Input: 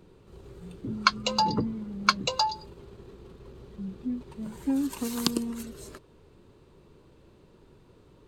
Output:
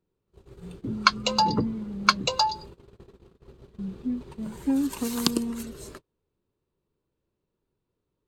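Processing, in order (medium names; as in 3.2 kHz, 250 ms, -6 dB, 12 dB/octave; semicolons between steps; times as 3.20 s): gate -45 dBFS, range -27 dB; trim +2.5 dB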